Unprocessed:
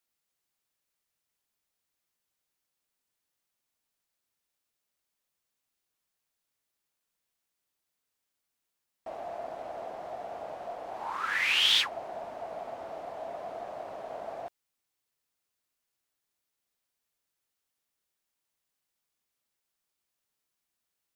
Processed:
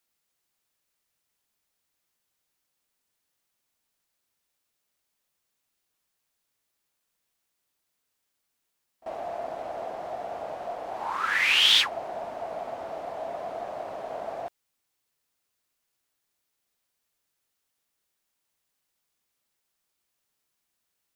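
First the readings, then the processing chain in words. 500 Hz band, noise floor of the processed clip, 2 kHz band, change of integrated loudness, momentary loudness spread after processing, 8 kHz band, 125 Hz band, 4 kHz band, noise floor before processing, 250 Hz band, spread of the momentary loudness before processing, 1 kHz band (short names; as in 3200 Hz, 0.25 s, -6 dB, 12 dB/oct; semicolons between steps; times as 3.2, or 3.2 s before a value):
+4.5 dB, -80 dBFS, +4.5 dB, +4.5 dB, 18 LU, +4.5 dB, +4.5 dB, +4.5 dB, -85 dBFS, +4.5 dB, 18 LU, +4.5 dB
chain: pre-echo 41 ms -20.5 dB; gain +4.5 dB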